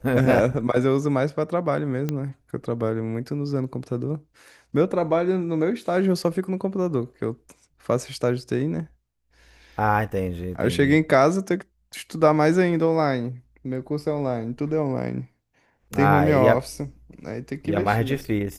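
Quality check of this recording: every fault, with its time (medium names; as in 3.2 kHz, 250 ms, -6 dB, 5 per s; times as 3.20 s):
2.09 s: pop -13 dBFS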